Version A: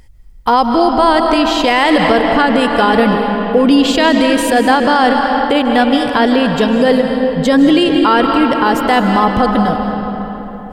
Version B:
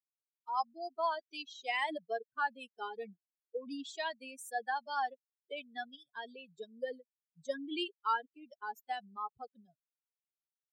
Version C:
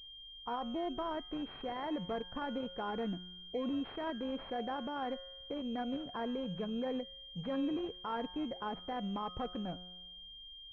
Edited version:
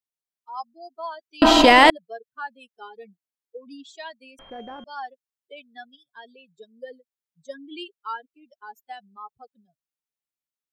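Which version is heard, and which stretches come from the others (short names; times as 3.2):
B
1.42–1.9 from A
4.39–4.84 from C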